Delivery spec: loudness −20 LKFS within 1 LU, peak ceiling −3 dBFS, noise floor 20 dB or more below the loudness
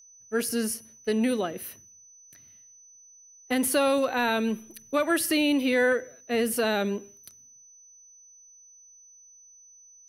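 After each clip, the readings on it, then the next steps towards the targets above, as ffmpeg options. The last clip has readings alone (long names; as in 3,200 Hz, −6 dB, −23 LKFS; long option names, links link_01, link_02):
interfering tone 6,000 Hz; level of the tone −51 dBFS; integrated loudness −26.5 LKFS; sample peak −12.5 dBFS; target loudness −20.0 LKFS
→ -af "bandreject=frequency=6000:width=30"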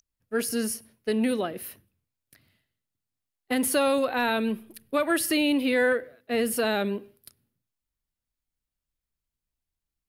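interfering tone none found; integrated loudness −26.5 LKFS; sample peak −13.0 dBFS; target loudness −20.0 LKFS
→ -af "volume=6.5dB"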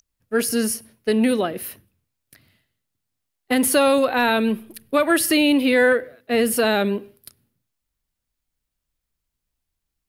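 integrated loudness −20.0 LKFS; sample peak −6.5 dBFS; background noise floor −81 dBFS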